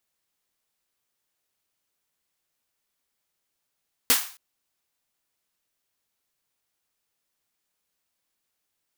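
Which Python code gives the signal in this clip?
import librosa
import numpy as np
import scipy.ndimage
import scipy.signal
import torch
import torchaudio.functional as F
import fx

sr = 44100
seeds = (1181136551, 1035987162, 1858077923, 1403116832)

y = fx.drum_snare(sr, seeds[0], length_s=0.27, hz=260.0, second_hz=470.0, noise_db=11.5, noise_from_hz=800.0, decay_s=0.13, noise_decay_s=0.42)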